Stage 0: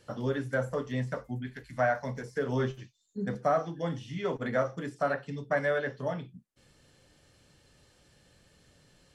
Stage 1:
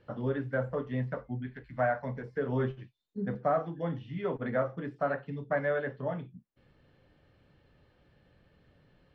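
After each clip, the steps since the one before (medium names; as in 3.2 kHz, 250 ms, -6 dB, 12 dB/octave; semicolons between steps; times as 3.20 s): distance through air 400 m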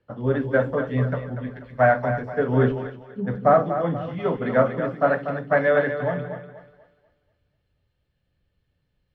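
two-band feedback delay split 400 Hz, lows 150 ms, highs 243 ms, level -6.5 dB; three bands expanded up and down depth 70%; trim +8.5 dB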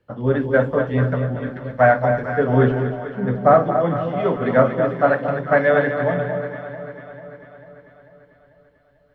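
echo whose repeats swap between lows and highs 222 ms, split 1 kHz, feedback 73%, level -9 dB; trim +3.5 dB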